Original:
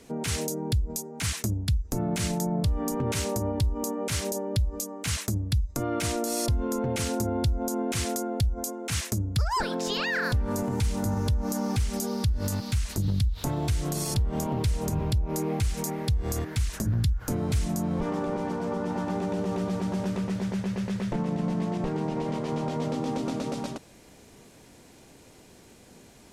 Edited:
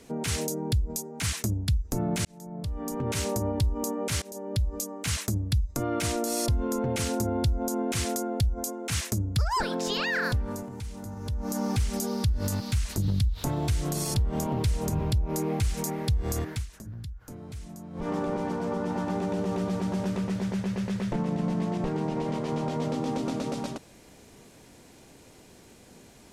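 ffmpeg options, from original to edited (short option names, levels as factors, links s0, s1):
-filter_complex "[0:a]asplit=7[s0][s1][s2][s3][s4][s5][s6];[s0]atrim=end=2.25,asetpts=PTS-STARTPTS,afade=t=out:st=2.246:d=0.004:c=hsin[s7];[s1]atrim=start=2.25:end=4.22,asetpts=PTS-STARTPTS,afade=t=in:d=1.01,afade=t=out:st=1.966:d=0.004:c=hsin:silence=0.0707946[s8];[s2]atrim=start=4.22:end=10.69,asetpts=PTS-STARTPTS,afade=t=in:d=0.59:c=qsin:silence=0.0707946,afade=t=out:st=6.04:d=0.43:silence=0.281838[s9];[s3]atrim=start=10.69:end=11.19,asetpts=PTS-STARTPTS,volume=0.282[s10];[s4]atrim=start=11.19:end=16.67,asetpts=PTS-STARTPTS,afade=t=in:d=0.43:silence=0.281838,afade=t=out:st=5.3:d=0.18:silence=0.199526[s11];[s5]atrim=start=16.67:end=17.93,asetpts=PTS-STARTPTS,volume=0.2[s12];[s6]atrim=start=17.93,asetpts=PTS-STARTPTS,afade=t=in:d=0.18:silence=0.199526[s13];[s7][s8][s9][s10][s11][s12][s13]concat=n=7:v=0:a=1"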